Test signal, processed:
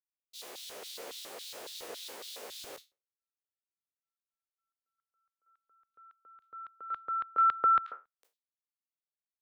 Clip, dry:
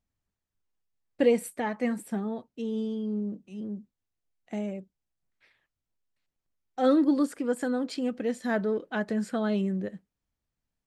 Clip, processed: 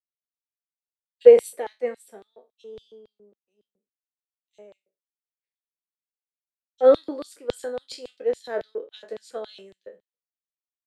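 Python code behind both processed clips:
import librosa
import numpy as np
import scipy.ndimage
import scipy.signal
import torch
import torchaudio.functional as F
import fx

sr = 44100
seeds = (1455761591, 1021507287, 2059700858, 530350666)

y = fx.spec_trails(x, sr, decay_s=0.31)
y = fx.filter_lfo_highpass(y, sr, shape='square', hz=3.6, low_hz=470.0, high_hz=3700.0, q=3.4)
y = fx.band_widen(y, sr, depth_pct=100)
y = y * 10.0 ** (-7.5 / 20.0)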